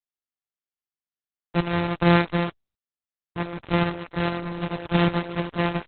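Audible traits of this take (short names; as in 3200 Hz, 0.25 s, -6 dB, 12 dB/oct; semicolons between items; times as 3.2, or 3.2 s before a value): a buzz of ramps at a fixed pitch in blocks of 256 samples; random-step tremolo; a quantiser's noise floor 6-bit, dither none; Opus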